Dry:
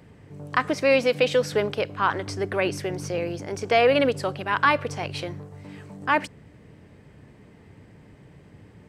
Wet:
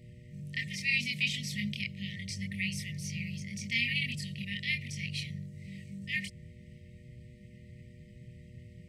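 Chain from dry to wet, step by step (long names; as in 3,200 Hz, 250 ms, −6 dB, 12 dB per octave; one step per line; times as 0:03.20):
multi-voice chorus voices 6, 0.62 Hz, delay 25 ms, depth 1.1 ms
linear-phase brick-wall band-stop 230–1,800 Hz
hum with harmonics 120 Hz, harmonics 5, −58 dBFS −5 dB per octave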